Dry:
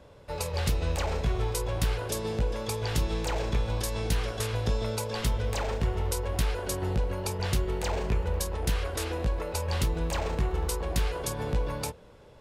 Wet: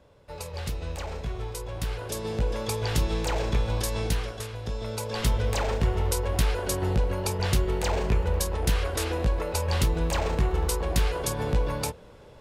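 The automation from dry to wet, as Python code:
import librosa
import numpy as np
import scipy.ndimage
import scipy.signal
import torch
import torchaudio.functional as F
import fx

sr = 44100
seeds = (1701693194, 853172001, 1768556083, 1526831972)

y = fx.gain(x, sr, db=fx.line((1.69, -5.0), (2.55, 2.5), (4.03, 2.5), (4.56, -7.0), (5.28, 3.5)))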